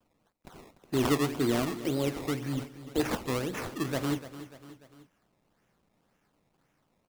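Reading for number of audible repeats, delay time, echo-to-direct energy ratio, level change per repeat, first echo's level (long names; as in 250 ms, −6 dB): 3, 295 ms, −12.5 dB, −5.5 dB, −14.0 dB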